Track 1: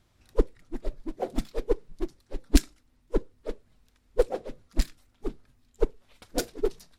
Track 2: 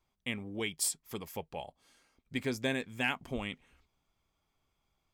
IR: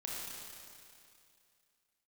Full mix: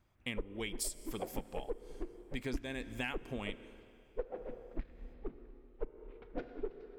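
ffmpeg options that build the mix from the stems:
-filter_complex "[0:a]lowpass=f=2500:w=0.5412,lowpass=f=2500:w=1.3066,volume=0.376,asplit=2[s0][s1];[s1]volume=0.316[s2];[1:a]volume=0.891,asplit=2[s3][s4];[s4]volume=0.112[s5];[2:a]atrim=start_sample=2205[s6];[s2][s5]amix=inputs=2:normalize=0[s7];[s7][s6]afir=irnorm=-1:irlink=0[s8];[s0][s3][s8]amix=inputs=3:normalize=0,acompressor=threshold=0.0178:ratio=5"

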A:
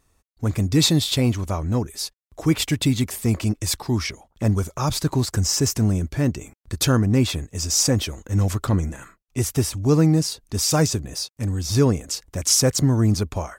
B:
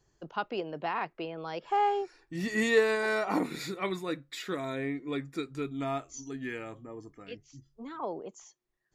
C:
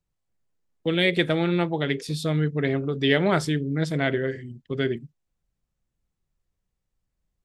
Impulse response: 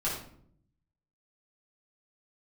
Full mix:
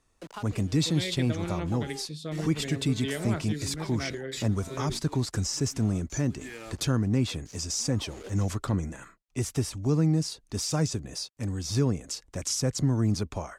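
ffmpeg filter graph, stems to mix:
-filter_complex "[0:a]volume=0.596,asplit=2[s0][s1];[1:a]acompressor=threshold=0.0112:ratio=6,bass=f=250:g=0,treble=f=4000:g=11,acrusher=bits=7:mix=0:aa=0.000001,volume=1.19[s2];[2:a]volume=0.335[s3];[s1]apad=whole_len=394297[s4];[s2][s4]sidechaincompress=threshold=0.0158:ratio=3:attack=40:release=189[s5];[s0][s5][s3]amix=inputs=3:normalize=0,acrossover=split=240[s6][s7];[s7]acompressor=threshold=0.0251:ratio=2[s8];[s6][s8]amix=inputs=2:normalize=0,lowpass=9500,equalizer=f=75:t=o:w=1.1:g=-5.5"

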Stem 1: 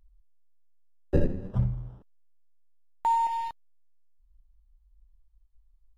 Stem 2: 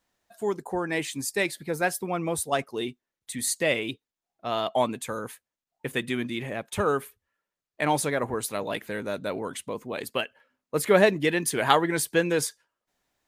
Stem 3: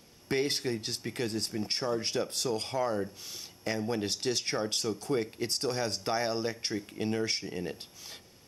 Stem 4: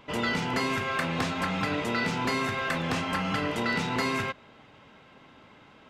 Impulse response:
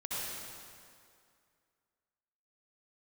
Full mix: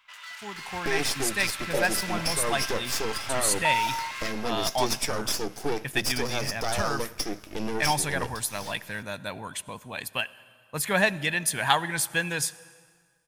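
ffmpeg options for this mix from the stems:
-filter_complex "[0:a]highpass=f=630:t=q:w=7.8,adelay=600,volume=0.224[s0];[1:a]equalizer=f=380:w=0.65:g=-12,aecho=1:1:1.2:0.34,volume=0.631,asplit=2[s1][s2];[s2]volume=0.075[s3];[2:a]aeval=exprs='max(val(0),0)':c=same,adelay=550,volume=1[s4];[3:a]alimiter=limit=0.0891:level=0:latency=1:release=162,volume=44.7,asoftclip=hard,volume=0.0224,highpass=f=1200:w=0.5412,highpass=f=1200:w=1.3066,volume=0.447,asplit=2[s5][s6];[s6]volume=0.473[s7];[4:a]atrim=start_sample=2205[s8];[s3][s7]amix=inputs=2:normalize=0[s9];[s9][s8]afir=irnorm=-1:irlink=0[s10];[s0][s1][s4][s5][s10]amix=inputs=5:normalize=0,dynaudnorm=f=200:g=7:m=2"

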